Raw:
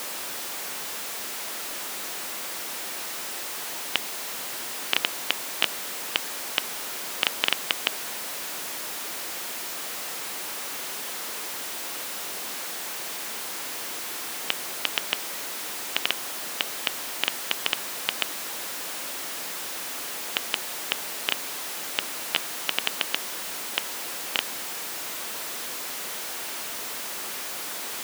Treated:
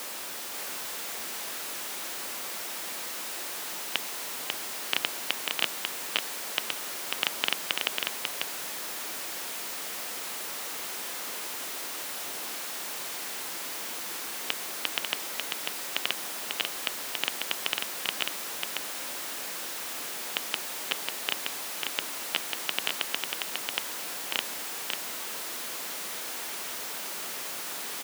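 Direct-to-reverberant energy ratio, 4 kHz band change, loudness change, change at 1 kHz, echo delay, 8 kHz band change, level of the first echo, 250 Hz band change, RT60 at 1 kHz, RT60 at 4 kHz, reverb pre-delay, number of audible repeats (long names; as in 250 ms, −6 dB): no reverb audible, −2.5 dB, −2.5 dB, −2.5 dB, 544 ms, −2.5 dB, −4.0 dB, −2.5 dB, no reverb audible, no reverb audible, no reverb audible, 1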